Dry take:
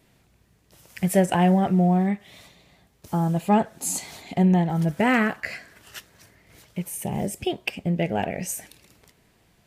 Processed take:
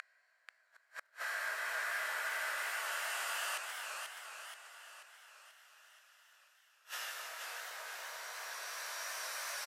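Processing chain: Doppler pass-by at 3.99, 9 m/s, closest 10 m; Paulstretch 16×, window 0.25 s, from 5.58; steep high-pass 560 Hz 36 dB/oct; doubler 19 ms -3 dB; transient shaper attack -6 dB, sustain -1 dB; bell 1300 Hz +7 dB 0.79 oct; flipped gate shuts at -42 dBFS, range -38 dB; warbling echo 0.483 s, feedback 53%, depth 159 cents, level -5 dB; gain +14 dB

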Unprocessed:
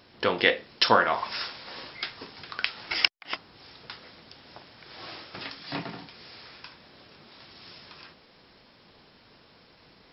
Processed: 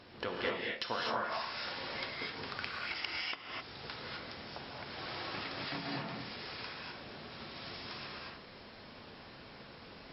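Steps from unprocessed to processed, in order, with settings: compressor 3:1, threshold -42 dBFS, peak gain reduction 20 dB; LPF 3900 Hz 6 dB/oct; non-linear reverb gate 0.28 s rising, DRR -3 dB; gain +1 dB

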